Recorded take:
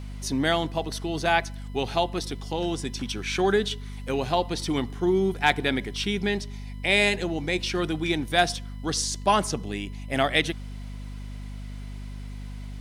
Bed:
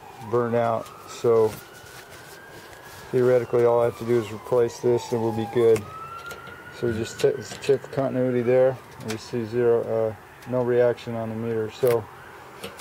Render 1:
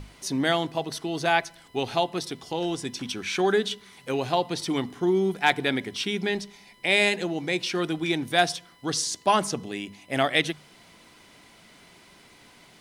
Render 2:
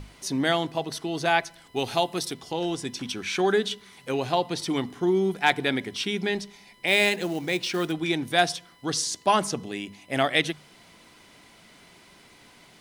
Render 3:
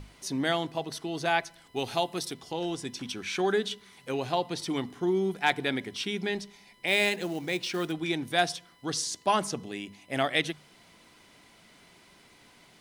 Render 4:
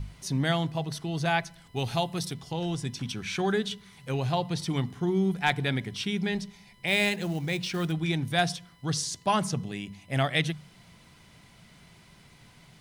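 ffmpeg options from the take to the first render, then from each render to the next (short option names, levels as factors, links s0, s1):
-af "bandreject=f=50:t=h:w=6,bandreject=f=100:t=h:w=6,bandreject=f=150:t=h:w=6,bandreject=f=200:t=h:w=6,bandreject=f=250:t=h:w=6"
-filter_complex "[0:a]asettb=1/sr,asplit=3[s0][s1][s2];[s0]atrim=end=1.764[s3];[s1]atrim=start=1.76:end=2.34,asetpts=PTS-STARTPTS,afade=t=in:d=0.004:c=qsin,afade=t=out:st=0.576:d=0.004:c=qsin,highshelf=f=7400:g=11[s4];[s2]atrim=start=2.336[s5];[s3][s4]acrossfade=d=0.004:c1=hsin:c2=qsin[s6];[s6][s5]acrossfade=d=0.004:c1=qsin:c2=hsin,asettb=1/sr,asplit=3[s7][s8][s9];[s7]atrim=end=6.874[s10];[s8]atrim=start=6.87:end=7.92,asetpts=PTS-STARTPTS,afade=t=in:d=0.004:c=qsin,afade=t=out:st=1.046:d=0.004:c=qsin,acrusher=bits=5:mode=log:mix=0:aa=0.000001[s11];[s9]atrim=start=7.916[s12];[s10][s11]acrossfade=d=0.004:c1=hsin:c2=qsin[s13];[s13][s12]acrossfade=d=0.004:c1=qsin:c2=hsin"
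-af "volume=0.631"
-af "lowshelf=f=210:t=q:w=1.5:g=10,bandreject=f=90.92:t=h:w=4,bandreject=f=181.84:t=h:w=4"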